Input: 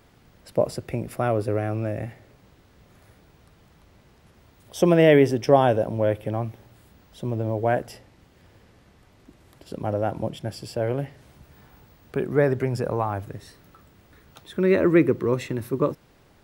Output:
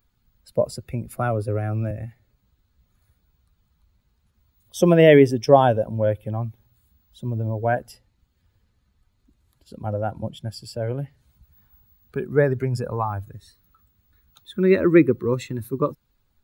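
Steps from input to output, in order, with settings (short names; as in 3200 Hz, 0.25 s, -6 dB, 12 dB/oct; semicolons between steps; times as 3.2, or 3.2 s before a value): per-bin expansion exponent 1.5; 1.13–1.91 three-band squash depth 40%; gain +4.5 dB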